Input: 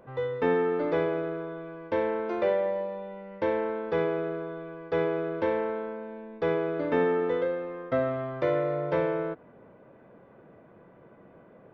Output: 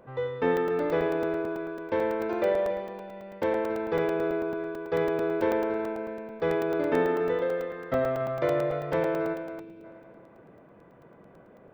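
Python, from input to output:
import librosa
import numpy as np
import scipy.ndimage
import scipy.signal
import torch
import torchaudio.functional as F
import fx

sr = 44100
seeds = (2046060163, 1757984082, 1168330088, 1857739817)

y = fx.echo_heads(x, sr, ms=94, heads='first and third', feedback_pct=54, wet_db=-12.0)
y = fx.spec_box(y, sr, start_s=9.59, length_s=0.25, low_hz=480.0, high_hz=2300.0, gain_db=-11)
y = fx.buffer_crackle(y, sr, first_s=0.57, period_s=0.11, block=128, kind='zero')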